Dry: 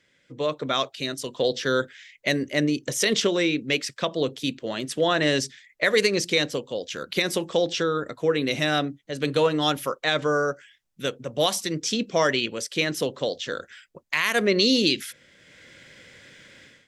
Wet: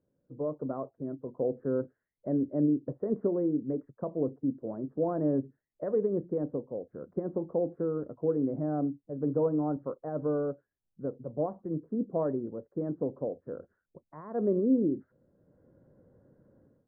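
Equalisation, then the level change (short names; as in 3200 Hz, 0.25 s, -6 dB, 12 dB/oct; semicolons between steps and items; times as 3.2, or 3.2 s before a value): Gaussian blur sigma 11 samples; dynamic EQ 280 Hz, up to +5 dB, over -41 dBFS, Q 6.1; -4.0 dB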